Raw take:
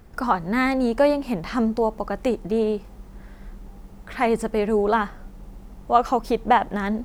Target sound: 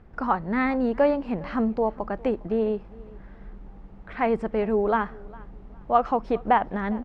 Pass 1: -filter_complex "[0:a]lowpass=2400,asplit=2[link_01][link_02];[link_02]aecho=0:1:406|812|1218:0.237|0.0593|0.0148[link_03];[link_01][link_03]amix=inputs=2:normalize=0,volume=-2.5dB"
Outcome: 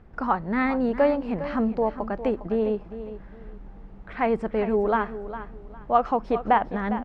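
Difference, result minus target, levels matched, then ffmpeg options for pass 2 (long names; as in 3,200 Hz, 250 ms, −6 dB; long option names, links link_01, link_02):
echo-to-direct +10.5 dB
-filter_complex "[0:a]lowpass=2400,asplit=2[link_01][link_02];[link_02]aecho=0:1:406|812:0.0708|0.0177[link_03];[link_01][link_03]amix=inputs=2:normalize=0,volume=-2.5dB"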